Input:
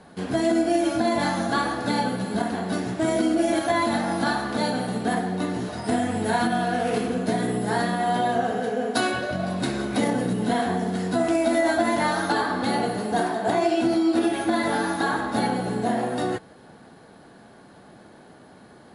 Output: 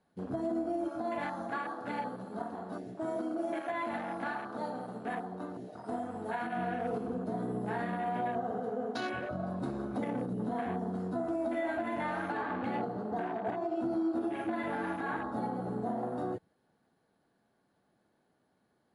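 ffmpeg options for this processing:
-filter_complex "[0:a]asettb=1/sr,asplit=3[a][b][c];[a]atrim=end=0.884[d];[b]atrim=start=0.88:end=6.57,asetpts=PTS-STARTPTS,afade=t=in:d=0.004:c=qsin,afade=t=out:st=5.686:d=0.004:c=qsin,lowshelf=f=290:g=-10.5[e];[c]atrim=start=6.566[f];[d][e]acrossfade=d=0.004:c1=hsin:c2=qsin[g];[g][f]acrossfade=d=0.004:c1=qsin:c2=hsin,asettb=1/sr,asplit=3[h][i][j];[h]atrim=end=12.374[k];[i]atrim=start=12.37:end=13.76,asetpts=PTS-STARTPTS,afade=t=in:d=0.004:c=qsin,afade=t=out:st=1.386:d=0.004:c=qsin,adynamicsmooth=sensitivity=5.5:basefreq=4.5k[l];[j]atrim=start=13.756[m];[k][l]acrossfade=d=0.004:c1=hsin:c2=qsin[n];[n][m]acrossfade=d=0.004:c1=qsin:c2=hsin,afwtdn=0.0282,alimiter=limit=-16dB:level=0:latency=1:release=127,volume=-9dB"

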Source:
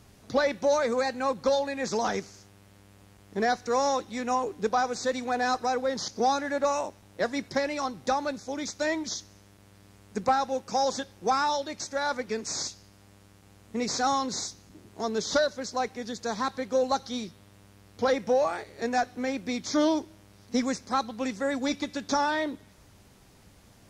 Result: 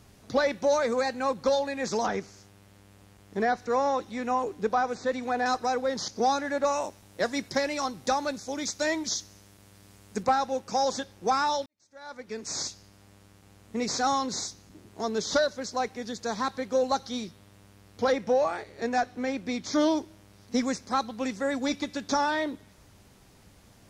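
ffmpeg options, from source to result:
-filter_complex "[0:a]asettb=1/sr,asplit=3[a][b][c];[a]atrim=end=2.064[d];[b]atrim=start=2.06:end=5.46,asetpts=PTS-STARTPTS,afade=t=in:d=0.004:c=qsin,afade=t=out:st=3.396:d=0.004:c=qsin,acrossover=split=3000[e][f];[f]acompressor=threshold=-49dB:ratio=4:attack=1:release=60[g];[e][g]amix=inputs=2:normalize=0[h];[c]atrim=start=5.456[i];[d][h]acrossfade=d=0.004:c1=hsin:c2=qsin[j];[j][i]acrossfade=d=0.004:c1=qsin:c2=hsin,asettb=1/sr,asplit=3[k][l][m];[k]atrim=end=6.814[n];[l]atrim=start=6.81:end=10.23,asetpts=PTS-STARTPTS,afade=t=in:d=0.004:c=qsin,afade=t=out:st=3.416:d=0.004:c=qsin,highshelf=f=4.3k:g=6.5[o];[m]atrim=start=10.226[p];[n][o]acrossfade=d=0.004:c1=hsin:c2=qsin[q];[q][p]acrossfade=d=0.004:c1=qsin:c2=hsin,asettb=1/sr,asplit=3[r][s][t];[r]atrim=end=18.124[u];[s]atrim=start=18.12:end=19.73,asetpts=PTS-STARTPTS,afade=t=in:d=0.004:c=qsin,afade=t=out:st=1.606:d=0.004:c=qsin,highshelf=f=7.4k:g=-6.5[v];[t]atrim=start=19.726[w];[u][v]acrossfade=d=0.004:c1=hsin:c2=qsin[x];[x][w]acrossfade=d=0.004:c1=qsin:c2=hsin,asplit=2[y][z];[y]atrim=end=11.66,asetpts=PTS-STARTPTS,afade=t=out:st=11.656:d=0.004:c=hsin[aa];[z]atrim=start=11.66,asetpts=PTS-STARTPTS,afade=t=in:d=0.92:c=qua[ab];[aa][ab]concat=n=2:v=0:a=1"

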